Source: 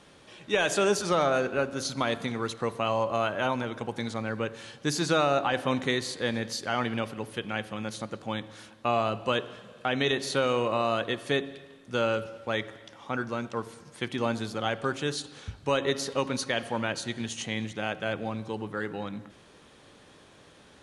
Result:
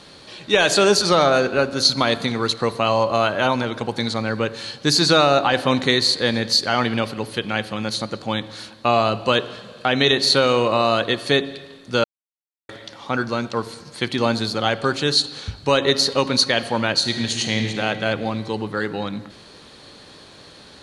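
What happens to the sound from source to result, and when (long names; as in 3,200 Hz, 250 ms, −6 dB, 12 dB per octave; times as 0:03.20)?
0:12.04–0:12.69: silence
0:16.98–0:17.79: thrown reverb, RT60 2.8 s, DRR 4.5 dB
whole clip: parametric band 4,300 Hz +14 dB 0.3 octaves; level +8.5 dB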